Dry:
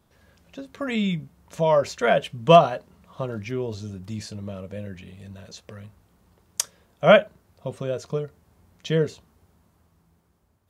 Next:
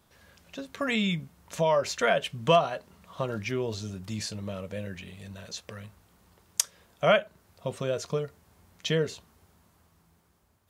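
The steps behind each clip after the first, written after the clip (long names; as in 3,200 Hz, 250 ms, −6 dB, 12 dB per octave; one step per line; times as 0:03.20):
tilt shelving filter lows −3.5 dB, about 840 Hz
downward compressor 2 to 1, threshold −25 dBFS, peak gain reduction 9.5 dB
level +1 dB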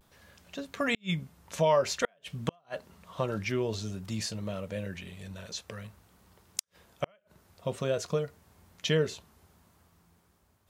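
pitch vibrato 0.52 Hz 40 cents
gate with flip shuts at −14 dBFS, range −41 dB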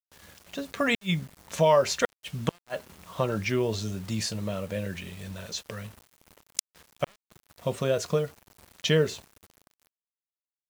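bit reduction 9 bits
level +4 dB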